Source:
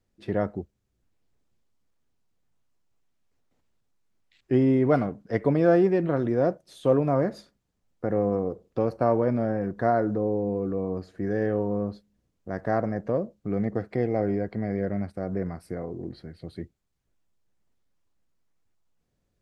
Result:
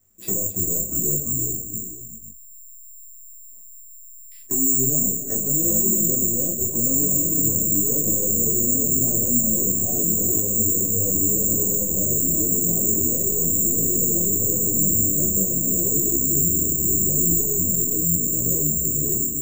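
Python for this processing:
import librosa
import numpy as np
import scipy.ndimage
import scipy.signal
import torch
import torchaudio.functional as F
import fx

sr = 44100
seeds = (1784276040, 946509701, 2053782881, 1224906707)

p1 = fx.echo_pitch(x, sr, ms=261, semitones=-3, count=3, db_per_echo=-3.0)
p2 = fx.env_lowpass_down(p1, sr, base_hz=600.0, full_db=-22.0)
p3 = fx.over_compress(p2, sr, threshold_db=-27.0, ratio=-1.0)
p4 = p2 + (p3 * librosa.db_to_amplitude(2.0))
p5 = 10.0 ** (-19.0 / 20.0) * np.tanh(p4 / 10.0 ** (-19.0 / 20.0))
p6 = fx.env_lowpass_down(p5, sr, base_hz=410.0, full_db=-24.0)
p7 = p6 + fx.echo_multitap(p6, sr, ms=(41, 276, 362, 488), db=(-8.0, -12.5, -10.5, -13.0), dry=0)
p8 = (np.kron(scipy.signal.resample_poly(p7, 1, 6), np.eye(6)[0]) * 6)[:len(p7)]
p9 = fx.detune_double(p8, sr, cents=30)
y = p9 * librosa.db_to_amplitude(-1.0)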